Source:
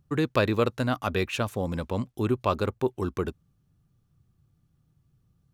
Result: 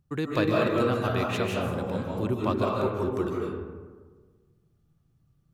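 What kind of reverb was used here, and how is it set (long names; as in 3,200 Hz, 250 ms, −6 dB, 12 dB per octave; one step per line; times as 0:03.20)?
comb and all-pass reverb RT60 1.5 s, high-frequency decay 0.4×, pre-delay 115 ms, DRR −3 dB
level −4.5 dB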